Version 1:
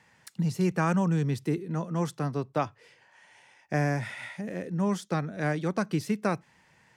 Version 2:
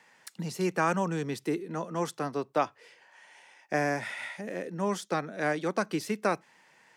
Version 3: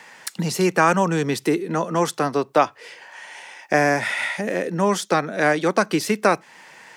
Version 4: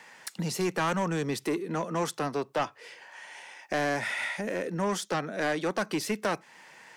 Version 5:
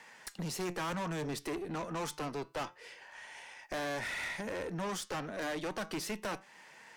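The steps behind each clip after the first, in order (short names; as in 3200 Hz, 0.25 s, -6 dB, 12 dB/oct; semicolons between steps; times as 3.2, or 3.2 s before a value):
HPF 300 Hz 12 dB/oct; gain +2 dB
low shelf 340 Hz -3.5 dB; in parallel at +1.5 dB: compressor, threshold -39 dBFS, peak gain reduction 16.5 dB; on the sum: gain +9 dB
soft clip -15.5 dBFS, distortion -11 dB; gain -6.5 dB
flange 0.29 Hz, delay 4.3 ms, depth 3.2 ms, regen +88%; tube stage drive 36 dB, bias 0.45; gain +2.5 dB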